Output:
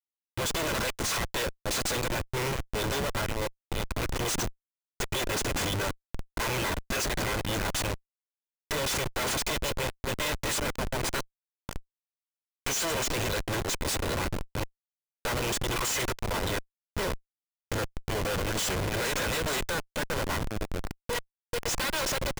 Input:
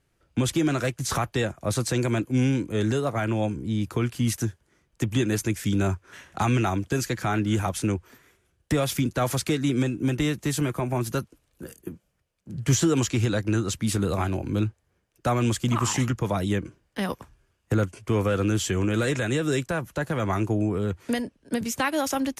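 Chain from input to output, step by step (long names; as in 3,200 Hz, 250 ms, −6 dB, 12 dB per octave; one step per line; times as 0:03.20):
lower of the sound and its delayed copy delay 2 ms
meter weighting curve ITU-R 468
on a send: single-tap delay 152 ms −23.5 dB
on the sum: comparator with hysteresis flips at −28.5 dBFS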